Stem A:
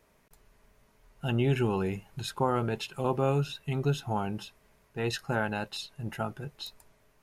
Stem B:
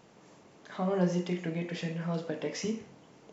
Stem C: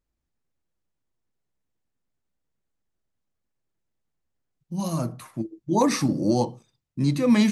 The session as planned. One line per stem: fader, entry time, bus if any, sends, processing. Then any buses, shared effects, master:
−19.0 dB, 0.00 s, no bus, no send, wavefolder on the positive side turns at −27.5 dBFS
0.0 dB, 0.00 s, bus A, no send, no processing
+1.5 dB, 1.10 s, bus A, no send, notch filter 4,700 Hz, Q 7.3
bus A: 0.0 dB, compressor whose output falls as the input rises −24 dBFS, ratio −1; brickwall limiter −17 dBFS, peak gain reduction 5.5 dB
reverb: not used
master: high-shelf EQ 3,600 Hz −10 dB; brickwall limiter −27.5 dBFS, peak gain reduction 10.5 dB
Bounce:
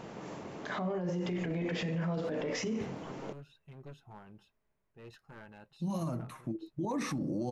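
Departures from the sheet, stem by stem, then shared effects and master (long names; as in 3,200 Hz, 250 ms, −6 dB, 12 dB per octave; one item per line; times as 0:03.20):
stem B 0.0 dB → +11.0 dB
stem C +1.5 dB → −5.0 dB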